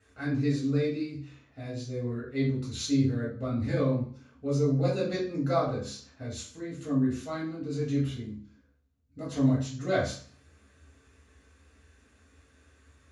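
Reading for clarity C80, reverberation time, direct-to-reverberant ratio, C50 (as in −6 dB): 10.0 dB, 0.50 s, −8.0 dB, 5.5 dB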